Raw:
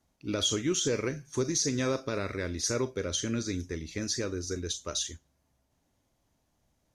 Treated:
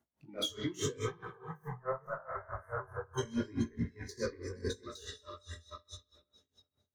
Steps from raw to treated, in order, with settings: backward echo that repeats 231 ms, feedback 58%, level -4 dB; level held to a coarse grid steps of 16 dB; high-pass 54 Hz 24 dB/octave; peaking EQ 5.4 kHz -9.5 dB 1.6 oct; peak limiter -31 dBFS, peak gain reduction 11.5 dB; power-law waveshaper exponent 0.7; 1.05–3.18 s: FFT filter 120 Hz 0 dB, 300 Hz -13 dB, 780 Hz +4 dB, 1.3 kHz +5 dB, 4.2 kHz -30 dB, 11 kHz -6 dB; spectral noise reduction 20 dB; on a send: bucket-brigade echo 65 ms, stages 2048, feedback 68%, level -11 dB; on the sum: chorus 0.8 Hz, delay 17 ms, depth 6.2 ms; logarithmic tremolo 4.7 Hz, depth 23 dB; trim +12 dB

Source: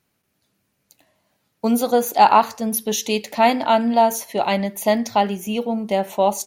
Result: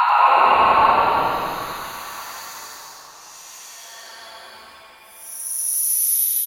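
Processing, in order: steep high-pass 1 kHz 36 dB/octave; Paulstretch 14×, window 0.10 s, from 2.33 s; dynamic bell 5 kHz, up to -6 dB, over -44 dBFS, Q 1.7; on a send: frequency-shifting echo 91 ms, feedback 62%, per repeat -150 Hz, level -7 dB; on the sum: trim +2 dB

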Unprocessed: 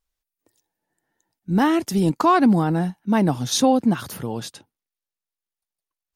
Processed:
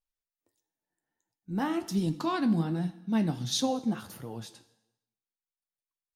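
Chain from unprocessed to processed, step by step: 1.88–3.61 s: graphic EQ 125/250/500/1000/4000 Hz +4/+3/-3/-4/+7 dB; plate-style reverb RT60 0.89 s, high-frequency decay 0.95×, DRR 11.5 dB; flange 1.4 Hz, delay 5.9 ms, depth 8.8 ms, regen +57%; trim -8 dB

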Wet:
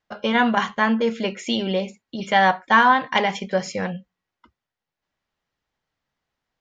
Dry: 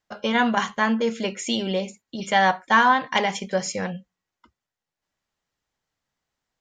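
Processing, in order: low-pass 4.5 kHz 12 dB/octave; trim +2 dB

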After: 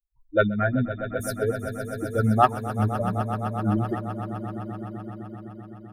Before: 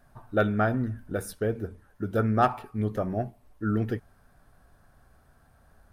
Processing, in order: expander on every frequency bin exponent 3; echo with a slow build-up 128 ms, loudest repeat 5, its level -14 dB; trim +7.5 dB

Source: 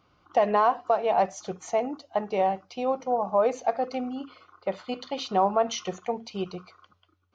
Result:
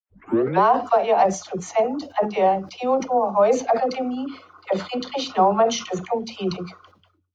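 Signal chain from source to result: tape start-up on the opening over 0.62 s; level rider gain up to 7.5 dB; expander -56 dBFS; phase dispersion lows, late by 79 ms, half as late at 500 Hz; decay stretcher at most 140 dB/s; trim -1.5 dB

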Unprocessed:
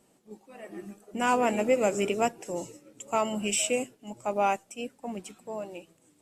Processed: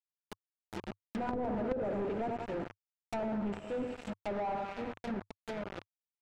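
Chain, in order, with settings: local Wiener filter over 41 samples; treble shelf 6.6 kHz +11.5 dB; hum notches 60/120/180/240/300/360/420/480/540/600 Hz; on a send: feedback delay 93 ms, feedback 55%, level -11 dB; on the sum: companded quantiser 2-bit; dynamic bell 100 Hz, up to +7 dB, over -56 dBFS, Q 3.4; low-pass that closes with the level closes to 540 Hz, closed at -22 dBFS; band-stop 1.1 kHz, Q 10; trim -7.5 dB

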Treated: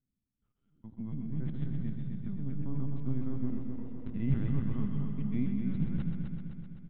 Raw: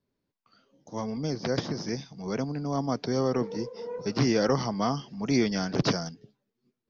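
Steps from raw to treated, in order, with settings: time reversed locally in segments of 140 ms; high-pass 86 Hz 12 dB/octave; feedback delay 85 ms, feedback 18%, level -19.5 dB; harmonic-percussive split percussive -6 dB; FFT filter 140 Hz 0 dB, 300 Hz -11 dB, 530 Hz -27 dB, 2.2 kHz -13 dB; LPC vocoder at 8 kHz pitch kept; treble shelf 2.3 kHz -10 dB; multi-head delay 128 ms, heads first and second, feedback 64%, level -8 dB; trim +2.5 dB

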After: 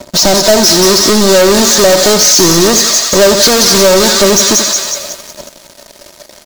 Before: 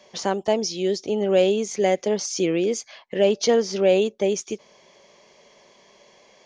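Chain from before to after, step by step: square wave that keeps the level; fifteen-band graphic EQ 160 Hz +11 dB, 630 Hz +7 dB, 2.5 kHz -5 dB; feedback echo behind a high-pass 182 ms, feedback 51%, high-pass 1.6 kHz, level -4 dB; flange 0.37 Hz, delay 0 ms, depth 5.7 ms, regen +72%; compression 4:1, threshold -18 dBFS, peak gain reduction 9.5 dB; high-order bell 5.3 kHz +10.5 dB 1.2 oct; feedback delay 84 ms, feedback 41%, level -12 dB; waveshaping leveller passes 5; comb 3.2 ms, depth 41%; trim +2.5 dB

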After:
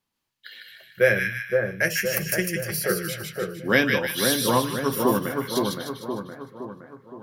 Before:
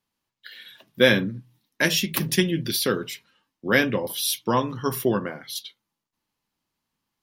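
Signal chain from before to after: 0.60–3.09 s: static phaser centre 980 Hz, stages 6; two-band feedback delay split 1.5 kHz, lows 517 ms, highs 152 ms, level -3 dB

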